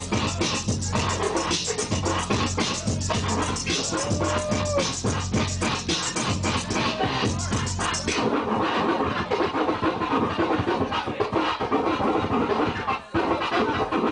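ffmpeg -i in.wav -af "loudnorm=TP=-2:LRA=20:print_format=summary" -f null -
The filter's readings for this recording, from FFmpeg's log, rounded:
Input Integrated:    -24.5 LUFS
Input True Peak:      -9.7 dBTP
Input LRA:             0.7 LU
Input Threshold:     -34.5 LUFS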